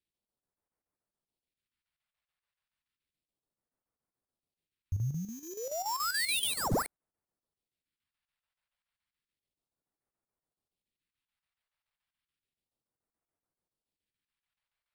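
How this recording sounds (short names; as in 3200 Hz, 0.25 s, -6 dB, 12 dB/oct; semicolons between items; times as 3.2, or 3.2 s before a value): aliases and images of a low sample rate 6400 Hz, jitter 0%; phasing stages 2, 0.32 Hz, lowest notch 290–3200 Hz; chopped level 7 Hz, depth 60%, duty 75%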